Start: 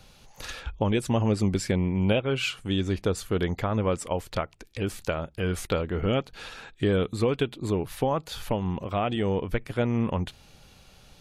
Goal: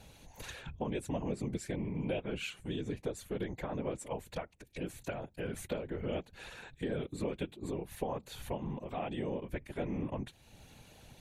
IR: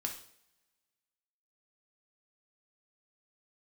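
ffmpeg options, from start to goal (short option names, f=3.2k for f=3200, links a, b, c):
-af "equalizer=f=100:t=o:w=0.33:g=-10,equalizer=f=1.25k:t=o:w=0.33:g=-10,equalizer=f=3.15k:t=o:w=0.33:g=-4,equalizer=f=5k:t=o:w=0.33:g=-10,afftfilt=real='hypot(re,im)*cos(2*PI*random(0))':imag='hypot(re,im)*sin(2*PI*random(1))':win_size=512:overlap=0.75,acompressor=threshold=-57dB:ratio=1.5,volume=5.5dB"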